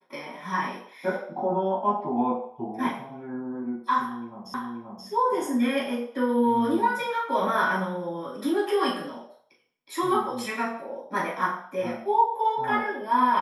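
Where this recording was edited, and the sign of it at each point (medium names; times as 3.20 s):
4.54 s: repeat of the last 0.53 s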